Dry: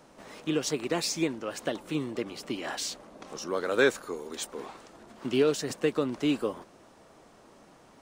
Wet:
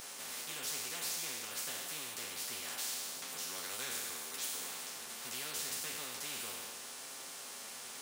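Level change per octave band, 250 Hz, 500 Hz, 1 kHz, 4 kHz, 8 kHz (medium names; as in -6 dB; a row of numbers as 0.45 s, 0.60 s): -24.5 dB, -23.0 dB, -9.0 dB, -3.0 dB, +1.5 dB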